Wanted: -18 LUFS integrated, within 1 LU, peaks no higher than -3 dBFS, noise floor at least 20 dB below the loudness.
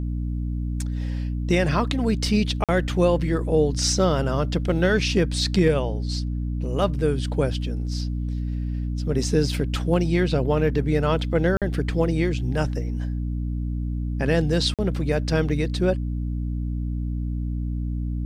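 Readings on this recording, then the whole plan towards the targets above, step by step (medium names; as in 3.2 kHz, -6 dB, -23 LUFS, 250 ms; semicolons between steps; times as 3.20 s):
dropouts 3; longest dropout 47 ms; hum 60 Hz; highest harmonic 300 Hz; hum level -24 dBFS; loudness -24.0 LUFS; peak level -8.0 dBFS; loudness target -18.0 LUFS
-> interpolate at 2.64/11.57/14.74 s, 47 ms; hum notches 60/120/180/240/300 Hz; trim +6 dB; peak limiter -3 dBFS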